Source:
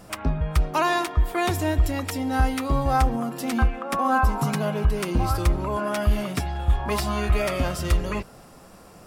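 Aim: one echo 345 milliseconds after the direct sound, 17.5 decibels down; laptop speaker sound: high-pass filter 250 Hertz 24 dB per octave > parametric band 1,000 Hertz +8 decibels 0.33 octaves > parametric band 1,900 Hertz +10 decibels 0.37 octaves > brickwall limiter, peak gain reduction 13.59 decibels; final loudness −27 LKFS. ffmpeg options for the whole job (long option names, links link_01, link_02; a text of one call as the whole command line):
ffmpeg -i in.wav -af "highpass=frequency=250:width=0.5412,highpass=frequency=250:width=1.3066,equalizer=frequency=1000:width_type=o:width=0.33:gain=8,equalizer=frequency=1900:width_type=o:width=0.37:gain=10,aecho=1:1:345:0.133,volume=3.5dB,alimiter=limit=-18dB:level=0:latency=1" out.wav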